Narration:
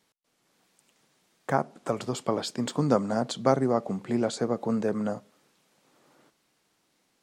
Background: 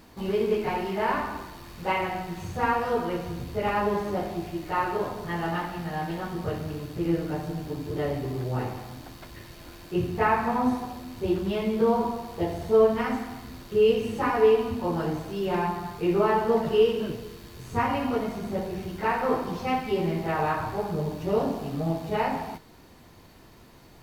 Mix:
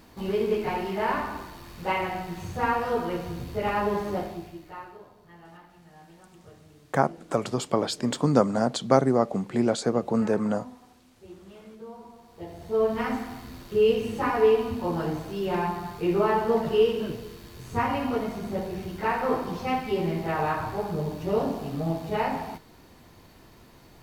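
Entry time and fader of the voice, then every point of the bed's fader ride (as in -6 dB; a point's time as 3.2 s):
5.45 s, +3.0 dB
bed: 4.17 s -0.5 dB
5.05 s -20.5 dB
12.01 s -20.5 dB
13.03 s -0.5 dB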